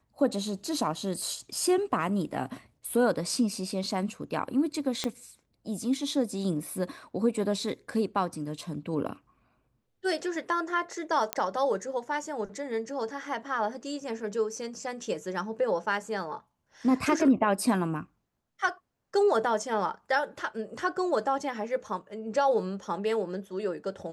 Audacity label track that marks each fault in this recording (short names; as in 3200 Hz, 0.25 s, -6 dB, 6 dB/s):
5.040000	5.040000	pop -15 dBFS
11.330000	11.330000	pop -10 dBFS